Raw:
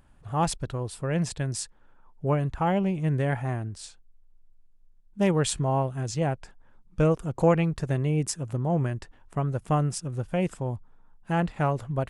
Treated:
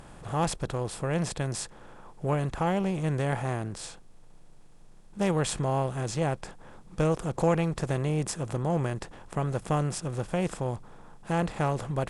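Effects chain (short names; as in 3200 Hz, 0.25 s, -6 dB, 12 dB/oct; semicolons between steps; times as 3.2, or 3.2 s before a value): per-bin compression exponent 0.6; gain -5 dB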